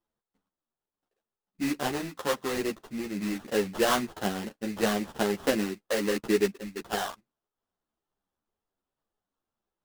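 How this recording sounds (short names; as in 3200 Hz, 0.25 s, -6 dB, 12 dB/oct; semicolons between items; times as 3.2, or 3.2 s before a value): aliases and images of a low sample rate 2300 Hz, jitter 20%; a shimmering, thickened sound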